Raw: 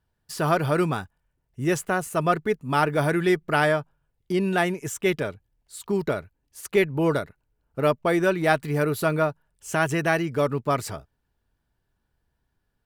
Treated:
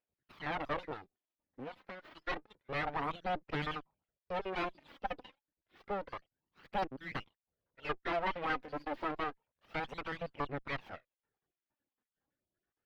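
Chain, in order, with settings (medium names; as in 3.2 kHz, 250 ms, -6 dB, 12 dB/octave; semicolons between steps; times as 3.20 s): random holes in the spectrogram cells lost 44%; full-wave rectifier; high-pass 330 Hz 6 dB/octave; 0.93–2.05 s: compression 16:1, threshold -37 dBFS, peak gain reduction 12.5 dB; 6.73–7.19 s: treble shelf 8.5 kHz +11.5 dB; valve stage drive 25 dB, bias 0.7; distance through air 360 m; phaser 0.29 Hz, delay 4.1 ms, feedback 44%; trim -1 dB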